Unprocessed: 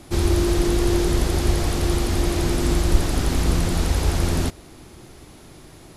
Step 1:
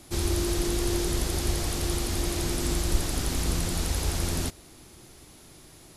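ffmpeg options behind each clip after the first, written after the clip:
-af "highshelf=f=3.4k:g=9,volume=-8dB"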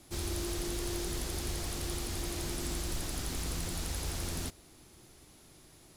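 -filter_complex "[0:a]acrossover=split=900[a][b];[a]asoftclip=type=tanh:threshold=-23.5dB[c];[c][b]amix=inputs=2:normalize=0,acrusher=bits=5:mode=log:mix=0:aa=0.000001,volume=-7dB"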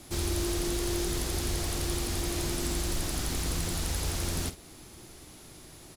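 -filter_complex "[0:a]asplit=2[a][b];[b]acompressor=threshold=-43dB:ratio=6,volume=-1.5dB[c];[a][c]amix=inputs=2:normalize=0,asplit=2[d][e];[e]adelay=49,volume=-12dB[f];[d][f]amix=inputs=2:normalize=0,volume=2.5dB"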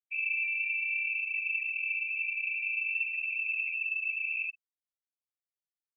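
-af "lowpass=f=2.3k:t=q:w=0.5098,lowpass=f=2.3k:t=q:w=0.6013,lowpass=f=2.3k:t=q:w=0.9,lowpass=f=2.3k:t=q:w=2.563,afreqshift=-2700,afftfilt=real='re*gte(hypot(re,im),0.0631)':imag='im*gte(hypot(re,im),0.0631)':win_size=1024:overlap=0.75,volume=-1dB"

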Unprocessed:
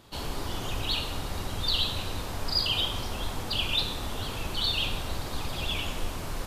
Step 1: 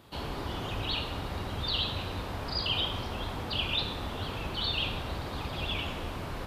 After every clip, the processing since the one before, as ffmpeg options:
-filter_complex "[0:a]equalizer=f=6.4k:w=0.97:g=-7,acrossover=split=6000[a][b];[b]acompressor=threshold=-60dB:ratio=4:attack=1:release=60[c];[a][c]amix=inputs=2:normalize=0,highpass=43"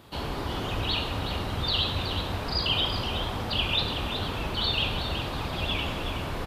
-af "aecho=1:1:372:0.376,volume=4dB"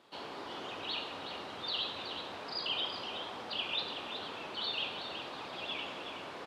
-af "highpass=330,lowpass=7k,volume=-8.5dB"

